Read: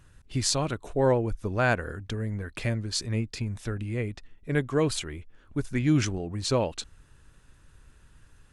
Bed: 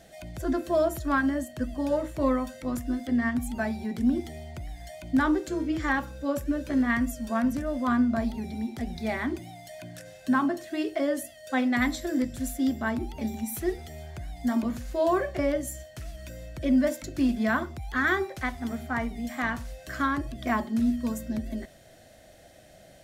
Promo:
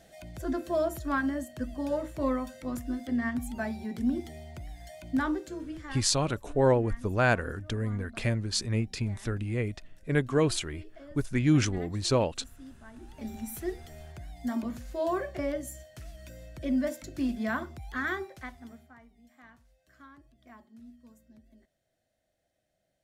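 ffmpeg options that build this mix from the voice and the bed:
ffmpeg -i stem1.wav -i stem2.wav -filter_complex "[0:a]adelay=5600,volume=0dB[link_01];[1:a]volume=13dB,afade=type=out:start_time=5.09:duration=0.98:silence=0.11885,afade=type=in:start_time=12.93:duration=0.44:silence=0.141254,afade=type=out:start_time=17.88:duration=1.08:silence=0.0944061[link_02];[link_01][link_02]amix=inputs=2:normalize=0" out.wav

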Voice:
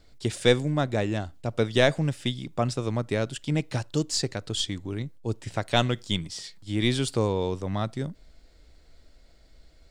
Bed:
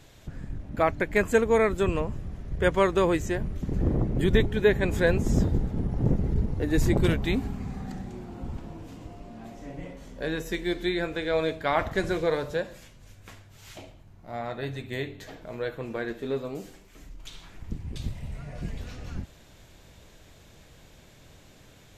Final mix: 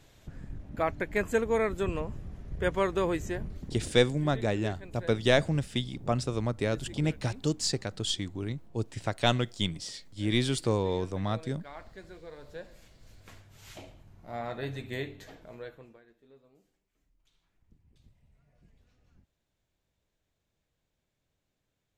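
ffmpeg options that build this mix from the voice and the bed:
ffmpeg -i stem1.wav -i stem2.wav -filter_complex "[0:a]adelay=3500,volume=-2.5dB[link_01];[1:a]volume=13dB,afade=type=out:start_time=3.37:duration=0.56:silence=0.16788,afade=type=in:start_time=12.35:duration=1.36:silence=0.11885,afade=type=out:start_time=14.92:duration=1.09:silence=0.0501187[link_02];[link_01][link_02]amix=inputs=2:normalize=0" out.wav

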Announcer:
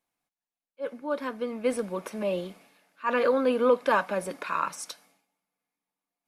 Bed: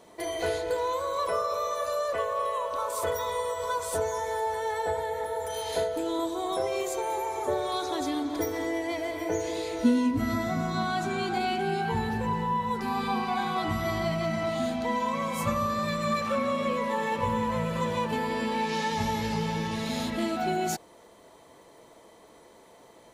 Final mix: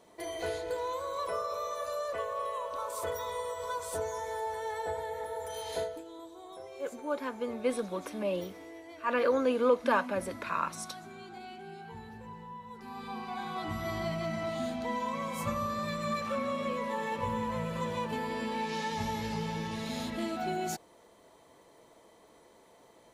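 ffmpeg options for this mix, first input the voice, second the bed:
ffmpeg -i stem1.wav -i stem2.wav -filter_complex "[0:a]adelay=6000,volume=-3.5dB[link_01];[1:a]volume=6dB,afade=type=out:start_time=5.83:duration=0.21:silence=0.266073,afade=type=in:start_time=12.71:duration=1.29:silence=0.251189[link_02];[link_01][link_02]amix=inputs=2:normalize=0" out.wav

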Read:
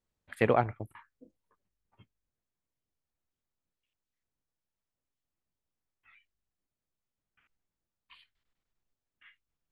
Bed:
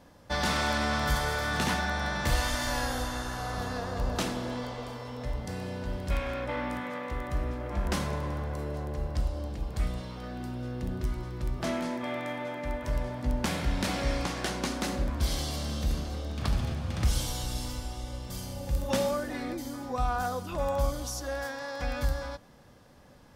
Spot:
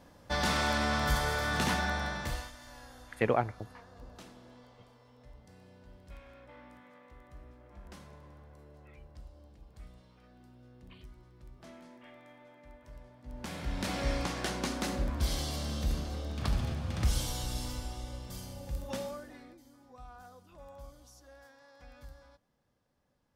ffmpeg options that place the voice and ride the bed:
ffmpeg -i stem1.wav -i stem2.wav -filter_complex "[0:a]adelay=2800,volume=-2.5dB[link_01];[1:a]volume=16.5dB,afade=type=out:start_time=1.9:duration=0.62:silence=0.112202,afade=type=in:start_time=13.24:duration=0.83:silence=0.125893,afade=type=out:start_time=17.82:duration=1.76:silence=0.112202[link_02];[link_01][link_02]amix=inputs=2:normalize=0" out.wav

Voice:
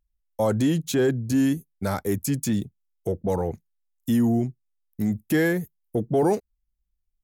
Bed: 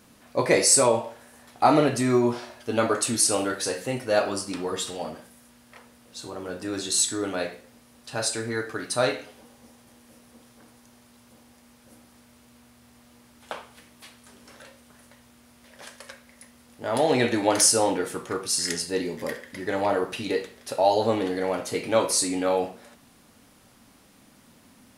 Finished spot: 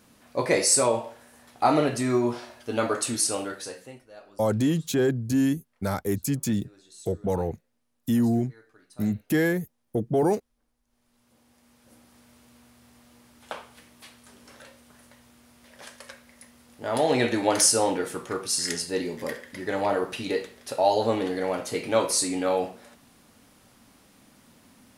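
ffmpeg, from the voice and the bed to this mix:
ffmpeg -i stem1.wav -i stem2.wav -filter_complex "[0:a]adelay=4000,volume=-1.5dB[link_01];[1:a]volume=22dB,afade=type=out:start_time=3.12:duration=0.95:silence=0.0707946,afade=type=in:start_time=10.85:duration=1.44:silence=0.0595662[link_02];[link_01][link_02]amix=inputs=2:normalize=0" out.wav

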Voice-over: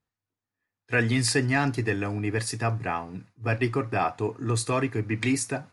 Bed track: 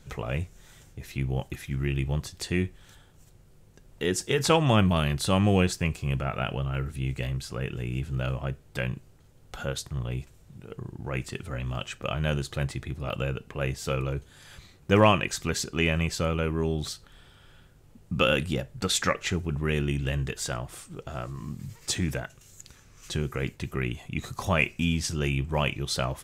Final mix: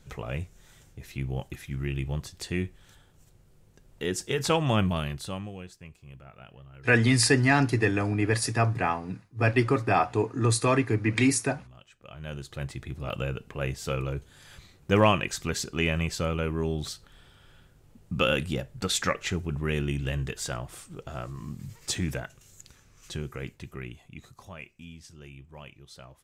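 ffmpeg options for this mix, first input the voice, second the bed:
ffmpeg -i stem1.wav -i stem2.wav -filter_complex "[0:a]adelay=5950,volume=2.5dB[link_01];[1:a]volume=15dB,afade=type=out:start_time=4.83:duration=0.69:silence=0.149624,afade=type=in:start_time=12.03:duration=1.01:silence=0.125893,afade=type=out:start_time=22.29:duration=2.25:silence=0.125893[link_02];[link_01][link_02]amix=inputs=2:normalize=0" out.wav

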